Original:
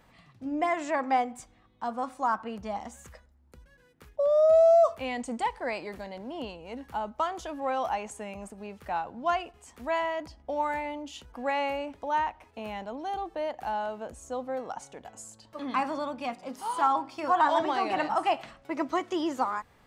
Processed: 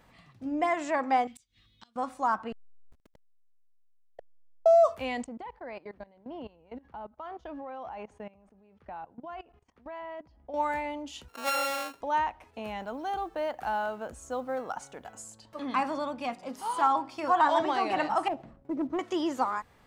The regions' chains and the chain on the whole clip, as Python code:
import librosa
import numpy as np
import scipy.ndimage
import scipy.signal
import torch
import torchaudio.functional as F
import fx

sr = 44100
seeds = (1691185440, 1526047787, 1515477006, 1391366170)

y = fx.chain(x, sr, fx.curve_eq(hz=(110.0, 800.0, 3700.0, 8000.0), db=(0, -20, 13, 3)),
    fx.gate_flip(shuts_db=-38.0, range_db=-25), at=(1.27, 1.96))
y = fx.chain(y, sr, fx.gate_flip(shuts_db=-29.0, range_db=-30),
    fx.backlash(play_db=-34.5), at=(2.52, 4.66))
y = fx.chain(y, sr, fx.spacing_loss(db_at_10k=26),
    fx.level_steps(step_db=20),
    fx.notch(hz=7600.0, q=6.0), at=(5.24, 10.54))
y = fx.chain(y, sr, fx.sample_sort(block=32),
    fx.highpass(hz=97.0, slope=12),
    fx.bass_treble(bass_db=-12, treble_db=-2), at=(11.28, 12.01))
y = fx.chain(y, sr, fx.peak_eq(hz=1400.0, db=6.5, octaves=0.46),
    fx.quant_companded(bits=8), at=(12.8, 15.22))
y = fx.chain(y, sr, fx.curve_eq(hz=(310.0, 720.0, 3200.0), db=(0, -10, -27)),
    fx.leveller(passes=1), at=(18.28, 18.99))